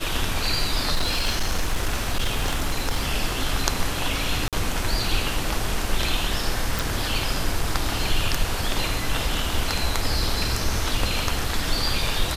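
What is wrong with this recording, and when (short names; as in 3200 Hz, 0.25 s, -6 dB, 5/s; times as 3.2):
0.94–3.12 clipped -17.5 dBFS
4.48–4.53 gap 47 ms
6.79 pop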